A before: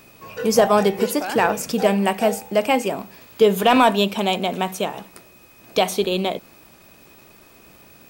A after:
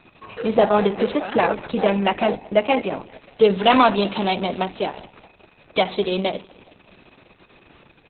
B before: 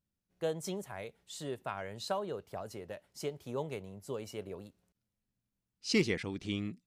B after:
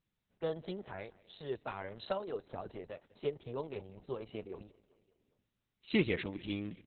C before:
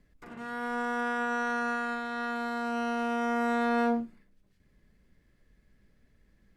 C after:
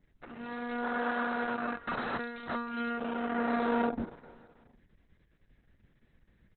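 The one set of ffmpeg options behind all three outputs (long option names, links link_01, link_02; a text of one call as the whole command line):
ffmpeg -i in.wav -af "aecho=1:1:197|394|591|788:0.0794|0.0453|0.0258|0.0147" -ar 48000 -c:a libopus -b:a 6k out.opus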